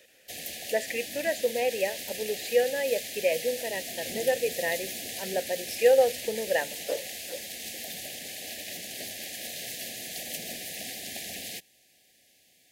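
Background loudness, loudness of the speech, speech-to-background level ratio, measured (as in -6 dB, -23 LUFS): -35.5 LUFS, -29.0 LUFS, 6.5 dB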